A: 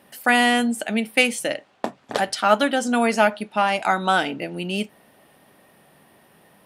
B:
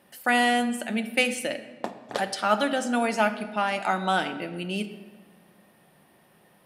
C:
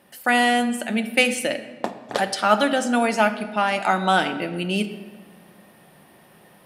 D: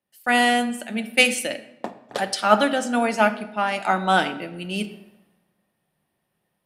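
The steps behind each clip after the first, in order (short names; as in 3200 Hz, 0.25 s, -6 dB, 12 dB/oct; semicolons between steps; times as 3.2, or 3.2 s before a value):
reverb RT60 1.4 s, pre-delay 6 ms, DRR 8.5 dB; gain -5.5 dB
vocal rider within 3 dB 2 s; gain +4.5 dB
three-band expander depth 70%; gain -1.5 dB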